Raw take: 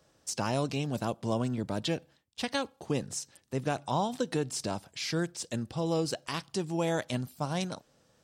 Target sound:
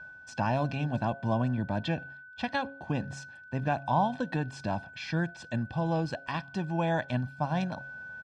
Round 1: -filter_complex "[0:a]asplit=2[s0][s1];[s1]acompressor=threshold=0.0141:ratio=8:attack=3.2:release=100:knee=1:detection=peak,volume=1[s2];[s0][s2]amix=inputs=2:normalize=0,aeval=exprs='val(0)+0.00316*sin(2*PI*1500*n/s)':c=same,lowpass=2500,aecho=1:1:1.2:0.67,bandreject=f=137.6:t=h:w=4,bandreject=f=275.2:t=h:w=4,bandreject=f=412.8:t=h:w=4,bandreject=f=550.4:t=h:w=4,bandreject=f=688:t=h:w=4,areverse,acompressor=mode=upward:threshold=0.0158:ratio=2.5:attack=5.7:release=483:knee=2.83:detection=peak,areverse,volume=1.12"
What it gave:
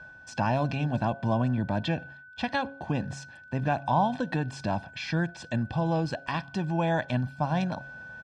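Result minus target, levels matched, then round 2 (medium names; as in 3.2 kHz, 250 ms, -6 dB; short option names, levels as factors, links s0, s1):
compression: peak gain reduction +14 dB
-af "aeval=exprs='val(0)+0.00316*sin(2*PI*1500*n/s)':c=same,lowpass=2500,aecho=1:1:1.2:0.67,bandreject=f=137.6:t=h:w=4,bandreject=f=275.2:t=h:w=4,bandreject=f=412.8:t=h:w=4,bandreject=f=550.4:t=h:w=4,bandreject=f=688:t=h:w=4,areverse,acompressor=mode=upward:threshold=0.0158:ratio=2.5:attack=5.7:release=483:knee=2.83:detection=peak,areverse,volume=1.12"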